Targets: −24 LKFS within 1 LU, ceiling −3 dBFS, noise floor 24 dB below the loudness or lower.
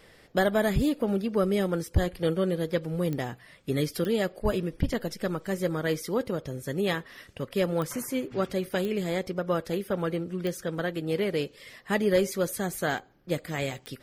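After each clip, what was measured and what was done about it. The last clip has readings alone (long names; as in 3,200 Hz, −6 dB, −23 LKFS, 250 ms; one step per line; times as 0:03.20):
number of clicks 6; integrated loudness −29.0 LKFS; sample peak −13.0 dBFS; target loudness −24.0 LKFS
→ click removal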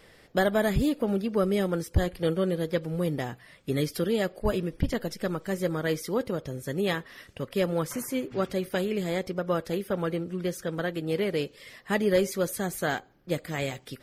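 number of clicks 0; integrated loudness −29.0 LKFS; sample peak −13.0 dBFS; target loudness −24.0 LKFS
→ level +5 dB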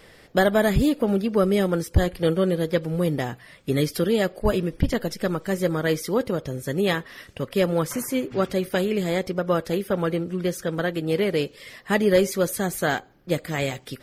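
integrated loudness −24.0 LKFS; sample peak −8.0 dBFS; background noise floor −51 dBFS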